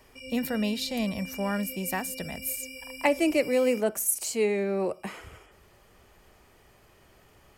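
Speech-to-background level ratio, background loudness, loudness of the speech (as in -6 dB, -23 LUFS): 12.0 dB, -40.5 LUFS, -28.5 LUFS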